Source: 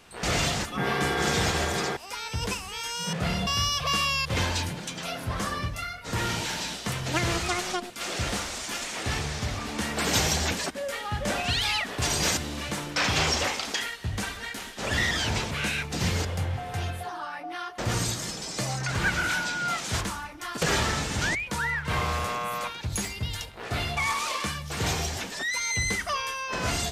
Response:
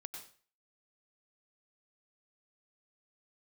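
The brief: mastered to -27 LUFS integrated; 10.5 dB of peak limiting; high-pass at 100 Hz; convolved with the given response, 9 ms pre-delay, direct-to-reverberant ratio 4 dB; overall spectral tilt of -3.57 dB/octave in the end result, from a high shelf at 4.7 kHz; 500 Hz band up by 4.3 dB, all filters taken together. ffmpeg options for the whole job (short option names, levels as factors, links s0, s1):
-filter_complex "[0:a]highpass=100,equalizer=f=500:t=o:g=5.5,highshelf=f=4700:g=-6,alimiter=limit=0.0944:level=0:latency=1,asplit=2[s0][s1];[1:a]atrim=start_sample=2205,adelay=9[s2];[s1][s2]afir=irnorm=-1:irlink=0,volume=0.944[s3];[s0][s3]amix=inputs=2:normalize=0,volume=1.26"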